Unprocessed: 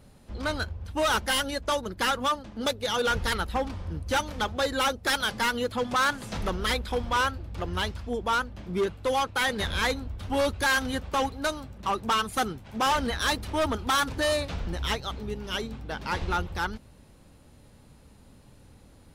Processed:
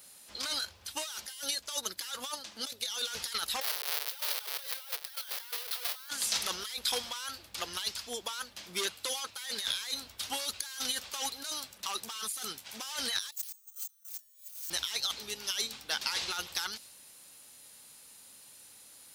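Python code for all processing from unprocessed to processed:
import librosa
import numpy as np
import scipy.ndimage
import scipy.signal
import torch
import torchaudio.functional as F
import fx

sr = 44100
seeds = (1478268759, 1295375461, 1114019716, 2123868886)

y = fx.chain(x, sr, fx.halfwave_hold(),
    fx.steep_highpass(hz=400.0, slope=96),
    fx.peak_eq(hz=7200.0, db=-12.5, octaves=0.72), at=(3.61, 6.09))
y = fx.chain(y, sr, fx.highpass(hz=720.0, slope=12),
    fx.resample_bad(factor=6, down='none', up='zero_stuff'), at=(13.32, 14.7))
y = np.diff(y, prepend=0.0)
y = fx.over_compress(y, sr, threshold_db=-46.0, ratio=-1.0)
y = fx.dynamic_eq(y, sr, hz=4700.0, q=1.0, threshold_db=-56.0, ratio=4.0, max_db=6)
y = F.gain(torch.from_numpy(y), 1.5).numpy()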